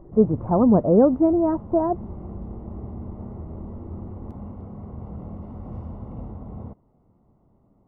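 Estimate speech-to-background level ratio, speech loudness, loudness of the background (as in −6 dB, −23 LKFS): 18.0 dB, −19.5 LKFS, −37.5 LKFS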